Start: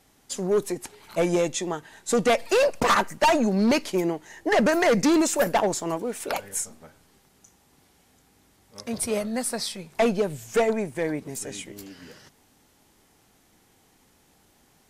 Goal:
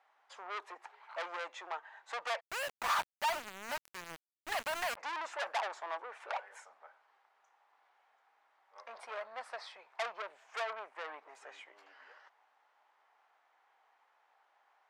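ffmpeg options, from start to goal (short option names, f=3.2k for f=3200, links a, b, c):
-filter_complex "[0:a]lowpass=1.4k,asoftclip=type=tanh:threshold=-27.5dB,highpass=f=780:w=0.5412,highpass=f=780:w=1.3066,asplit=3[a][b][c];[a]afade=t=out:st=2.39:d=0.02[d];[b]aeval=exprs='val(0)*gte(abs(val(0)),0.0133)':c=same,afade=t=in:st=2.39:d=0.02,afade=t=out:st=4.96:d=0.02[e];[c]afade=t=in:st=4.96:d=0.02[f];[d][e][f]amix=inputs=3:normalize=0"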